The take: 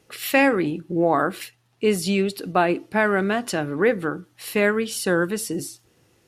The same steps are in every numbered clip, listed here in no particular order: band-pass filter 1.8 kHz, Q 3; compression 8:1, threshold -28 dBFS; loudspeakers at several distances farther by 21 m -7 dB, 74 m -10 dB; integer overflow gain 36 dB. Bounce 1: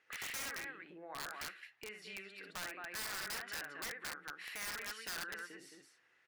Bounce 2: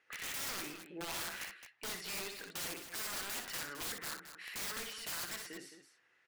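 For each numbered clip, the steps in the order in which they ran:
loudspeakers at several distances > compression > band-pass filter > integer overflow; band-pass filter > compression > integer overflow > loudspeakers at several distances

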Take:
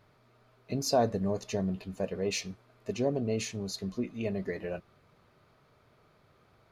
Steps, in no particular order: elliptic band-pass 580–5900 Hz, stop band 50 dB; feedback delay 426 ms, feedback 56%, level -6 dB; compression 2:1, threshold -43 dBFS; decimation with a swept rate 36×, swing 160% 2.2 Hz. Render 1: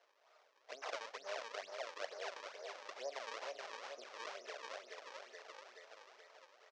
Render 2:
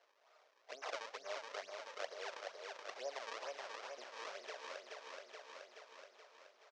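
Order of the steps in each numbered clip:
feedback delay > compression > decimation with a swept rate > elliptic band-pass; decimation with a swept rate > feedback delay > compression > elliptic band-pass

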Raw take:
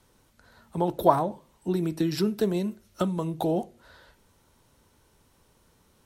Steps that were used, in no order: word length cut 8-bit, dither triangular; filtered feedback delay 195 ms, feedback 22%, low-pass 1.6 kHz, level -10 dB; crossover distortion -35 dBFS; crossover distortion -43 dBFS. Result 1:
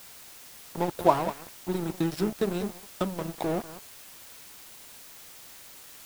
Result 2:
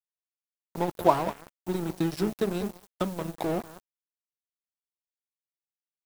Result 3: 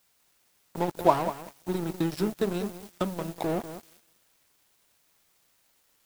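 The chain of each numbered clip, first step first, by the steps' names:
second crossover distortion > filtered feedback delay > first crossover distortion > word length cut; filtered feedback delay > second crossover distortion > word length cut > first crossover distortion; first crossover distortion > word length cut > filtered feedback delay > second crossover distortion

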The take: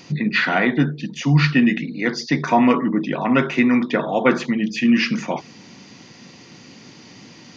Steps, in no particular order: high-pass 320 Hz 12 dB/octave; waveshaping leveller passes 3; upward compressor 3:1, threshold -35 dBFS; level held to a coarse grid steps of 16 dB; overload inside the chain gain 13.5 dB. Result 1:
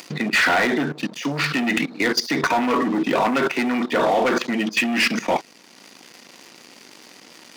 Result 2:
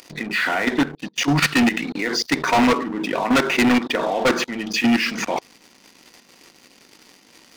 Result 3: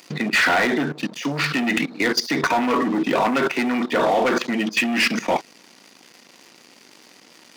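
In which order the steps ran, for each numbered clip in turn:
waveshaping leveller > level held to a coarse grid > upward compressor > high-pass > overload inside the chain; upward compressor > level held to a coarse grid > high-pass > waveshaping leveller > overload inside the chain; waveshaping leveller > upward compressor > level held to a coarse grid > high-pass > overload inside the chain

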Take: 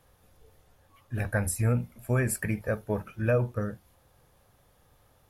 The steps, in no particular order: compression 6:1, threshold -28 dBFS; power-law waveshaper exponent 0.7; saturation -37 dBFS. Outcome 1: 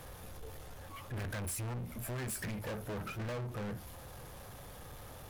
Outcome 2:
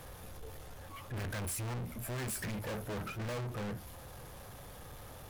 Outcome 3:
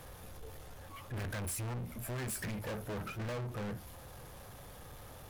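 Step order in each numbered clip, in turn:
power-law waveshaper > compression > saturation; power-law waveshaper > saturation > compression; compression > power-law waveshaper > saturation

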